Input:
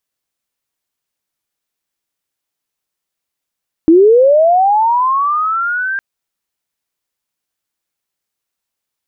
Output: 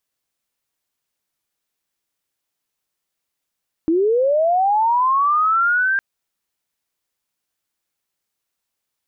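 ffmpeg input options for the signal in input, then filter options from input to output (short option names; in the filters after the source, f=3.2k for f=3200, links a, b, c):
-f lavfi -i "aevalsrc='pow(10,(-3-12.5*t/2.11)/20)*sin(2*PI*(310*t+1290*t*t/(2*2.11)))':d=2.11:s=44100"
-af "alimiter=limit=-13.5dB:level=0:latency=1"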